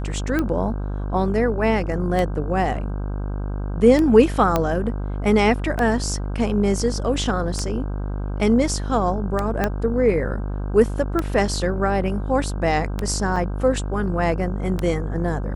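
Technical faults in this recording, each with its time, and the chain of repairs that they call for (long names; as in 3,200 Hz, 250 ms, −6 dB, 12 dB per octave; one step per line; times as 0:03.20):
mains buzz 50 Hz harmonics 32 −26 dBFS
scratch tick 33 1/3 rpm −10 dBFS
0:04.56: click −6 dBFS
0:09.64: click −7 dBFS
0:13.36: drop-out 3.2 ms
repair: click removal
hum removal 50 Hz, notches 32
repair the gap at 0:13.36, 3.2 ms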